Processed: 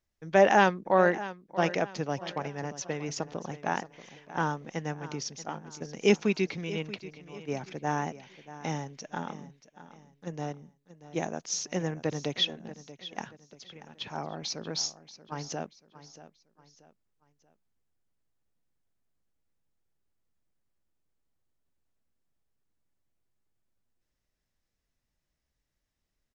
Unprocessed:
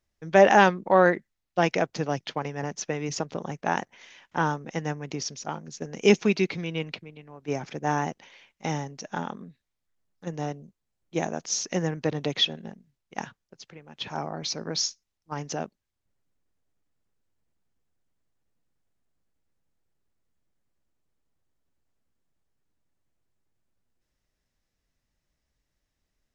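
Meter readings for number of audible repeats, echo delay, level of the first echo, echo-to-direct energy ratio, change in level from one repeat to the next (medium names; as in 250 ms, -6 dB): 3, 633 ms, -15.5 dB, -15.0 dB, -8.5 dB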